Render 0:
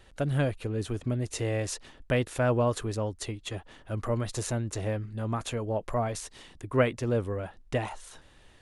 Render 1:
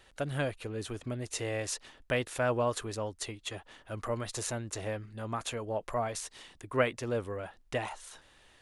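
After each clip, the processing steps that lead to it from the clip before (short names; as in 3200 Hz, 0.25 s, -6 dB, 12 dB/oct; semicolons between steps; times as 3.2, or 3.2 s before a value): low shelf 400 Hz -9.5 dB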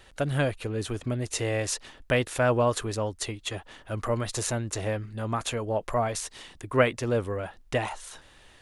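low shelf 200 Hz +3.5 dB; gain +5.5 dB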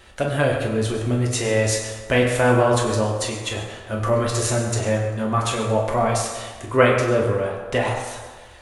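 reverb RT60 1.5 s, pre-delay 6 ms, DRR -2 dB; gain +3.5 dB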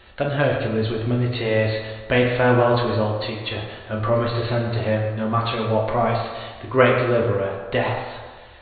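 brick-wall FIR low-pass 4500 Hz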